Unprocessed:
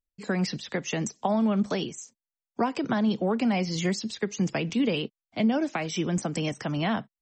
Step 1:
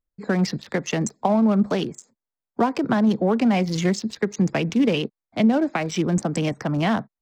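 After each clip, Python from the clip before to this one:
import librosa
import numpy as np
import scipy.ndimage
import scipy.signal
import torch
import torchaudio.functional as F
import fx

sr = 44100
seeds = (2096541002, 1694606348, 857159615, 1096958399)

y = fx.wiener(x, sr, points=15)
y = F.gain(torch.from_numpy(y), 6.0).numpy()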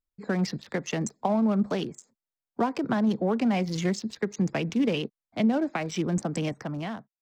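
y = fx.fade_out_tail(x, sr, length_s=0.78)
y = F.gain(torch.from_numpy(y), -5.5).numpy()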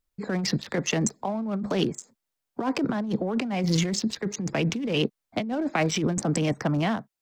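y = fx.over_compress(x, sr, threshold_db=-30.0, ratio=-1.0)
y = F.gain(torch.from_numpy(y), 4.5).numpy()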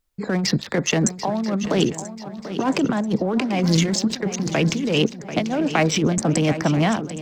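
y = fx.echo_swing(x, sr, ms=986, ratio=3, feedback_pct=41, wet_db=-12.5)
y = F.gain(torch.from_numpy(y), 5.5).numpy()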